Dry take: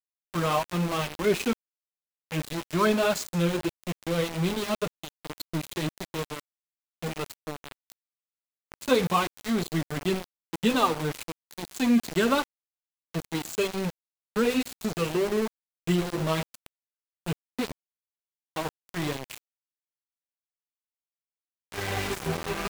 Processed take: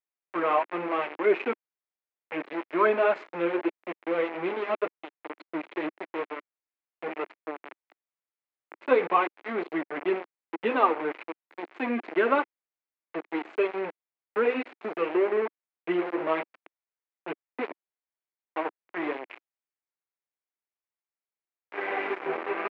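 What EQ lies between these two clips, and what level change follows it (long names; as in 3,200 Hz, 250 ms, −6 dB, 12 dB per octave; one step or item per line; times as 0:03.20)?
Chebyshev band-pass filter 320–2,300 Hz, order 3
+2.5 dB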